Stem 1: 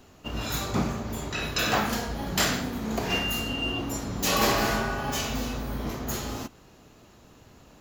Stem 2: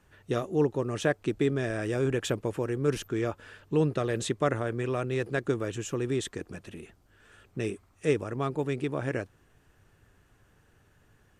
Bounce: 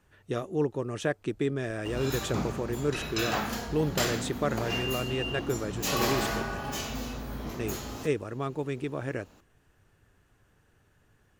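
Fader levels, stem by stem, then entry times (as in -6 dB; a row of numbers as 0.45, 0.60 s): -5.0, -2.5 dB; 1.60, 0.00 s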